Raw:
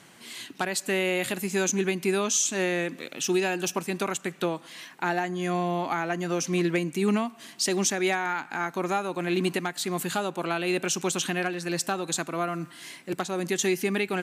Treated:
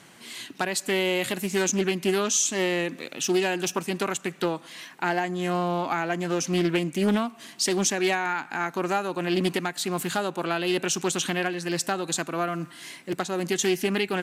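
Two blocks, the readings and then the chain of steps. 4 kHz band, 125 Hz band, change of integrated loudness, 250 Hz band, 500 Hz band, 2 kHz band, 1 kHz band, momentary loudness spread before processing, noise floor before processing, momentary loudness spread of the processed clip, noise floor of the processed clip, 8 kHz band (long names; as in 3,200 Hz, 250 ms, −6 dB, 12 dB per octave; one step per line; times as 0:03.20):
+2.5 dB, +1.0 dB, +1.5 dB, +1.5 dB, +1.5 dB, +1.0 dB, +1.5 dB, 7 LU, −51 dBFS, 7 LU, −50 dBFS, +1.0 dB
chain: highs frequency-modulated by the lows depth 0.29 ms
level +1.5 dB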